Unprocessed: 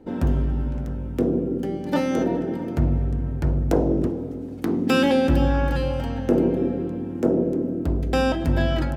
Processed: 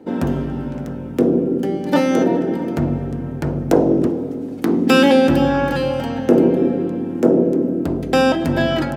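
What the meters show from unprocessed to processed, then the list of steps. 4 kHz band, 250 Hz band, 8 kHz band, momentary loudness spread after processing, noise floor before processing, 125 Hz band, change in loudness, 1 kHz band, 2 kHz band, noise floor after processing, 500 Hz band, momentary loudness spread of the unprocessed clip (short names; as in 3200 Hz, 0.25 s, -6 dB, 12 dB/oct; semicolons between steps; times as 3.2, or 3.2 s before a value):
+7.0 dB, +6.5 dB, +7.0 dB, 10 LU, -32 dBFS, +0.5 dB, +5.5 dB, +7.0 dB, +7.0 dB, -28 dBFS, +7.0 dB, 8 LU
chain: HPF 160 Hz 12 dB/oct; gain +7 dB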